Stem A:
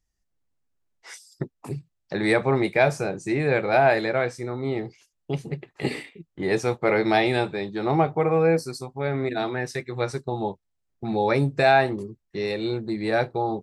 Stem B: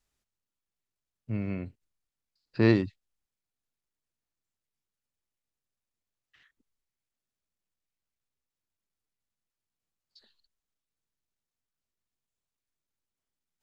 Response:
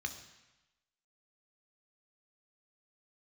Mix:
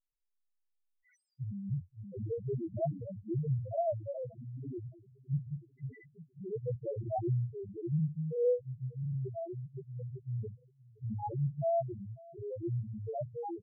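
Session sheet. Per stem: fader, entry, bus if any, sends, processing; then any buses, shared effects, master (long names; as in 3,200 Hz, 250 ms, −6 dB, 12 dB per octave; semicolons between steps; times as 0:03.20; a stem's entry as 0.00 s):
−3.0 dB, 0.00 s, no send, echo send −23 dB, parametric band 120 Hz +10.5 dB 0.76 octaves; flanger 0.56 Hz, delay 7.7 ms, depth 5.1 ms, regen +25%
−1.0 dB, 0.15 s, no send, echo send −6.5 dB, high-pass filter 44 Hz; downward compressor 16 to 1, threshold −23 dBFS, peak gain reduction 8.5 dB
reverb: not used
echo: repeating echo 526 ms, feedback 58%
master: spectral peaks only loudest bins 1; one half of a high-frequency compander decoder only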